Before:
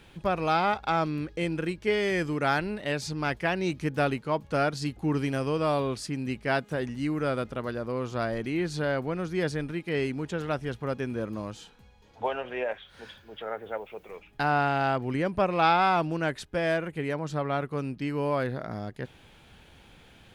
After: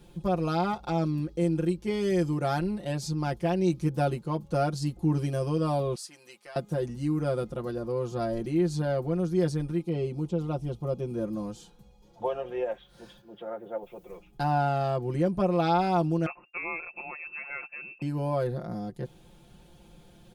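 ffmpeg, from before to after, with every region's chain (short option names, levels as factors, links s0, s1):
-filter_complex "[0:a]asettb=1/sr,asplit=3[s0][s1][s2];[s0]atrim=end=5.954[s3];[s1]atrim=start=5.95:end=6.56,asetpts=PTS-STARTPTS,afade=t=in:d=0.004:c=qsin,afade=t=out:st=0.606:d=0.004:c=qsin,highpass=990,acompressor=threshold=0.0178:ratio=5:attack=3.2:release=140:knee=1:detection=peak[s4];[s2]atrim=start=6.556[s5];[s3][s4]acrossfade=d=0.004:c1=hsin:c2=qsin[s6];[s6][s5]acrossfade=d=0.004:c1=qsin:c2=hsin,asettb=1/sr,asplit=3[s7][s8][s9];[s7]atrim=end=9.834[s10];[s8]atrim=start=9.83:end=11.13,asetpts=PTS-STARTPTS,afade=t=in:d=0.004:c=qsin,afade=t=out:st=1.296:d=0.004:c=qsin,acrossover=split=3800[s11][s12];[s12]acompressor=threshold=0.00126:ratio=4:attack=1:release=60[s13];[s11][s13]amix=inputs=2:normalize=0,equalizer=f=1700:w=3.1:g=-14.5[s14];[s9]atrim=start=11.126[s15];[s10][s14]acrossfade=d=0.004:c1=hsin:c2=qsin[s16];[s16][s15]acrossfade=d=0.004:c1=qsin:c2=hsin,asettb=1/sr,asplit=3[s17][s18][s19];[s17]atrim=end=13.214[s20];[s18]atrim=start=13.21:end=13.83,asetpts=PTS-STARTPTS,afade=t=in:d=0.004:c=qsin,afade=t=out:st=0.616:d=0.004:c=qsin,highpass=120,highshelf=f=3200:g=-8[s21];[s19]atrim=start=13.826[s22];[s20][s21]acrossfade=d=0.004:c1=hsin:c2=qsin[s23];[s23][s22]acrossfade=d=0.004:c1=qsin:c2=hsin,asettb=1/sr,asplit=3[s24][s25][s26];[s24]atrim=end=16.264[s27];[s25]atrim=start=16.26:end=18.02,asetpts=PTS-STARTPTS,afade=t=in:d=0.004:c=qsin,afade=t=out:st=1.756:d=0.004:c=qsin,agate=range=0.0224:threshold=0.00316:ratio=3:release=100:detection=peak,lowpass=f=2400:t=q:w=0.5098,lowpass=f=2400:t=q:w=0.6013,lowpass=f=2400:t=q:w=0.9,lowpass=f=2400:t=q:w=2.563,afreqshift=-2800[s28];[s26]atrim=start=18.016[s29];[s27][s28]acrossfade=d=0.004:c1=hsin:c2=qsin[s30];[s30][s29]acrossfade=d=0.004:c1=qsin:c2=hsin,equalizer=f=2000:w=0.68:g=-14.5,aecho=1:1:5.7:0.94"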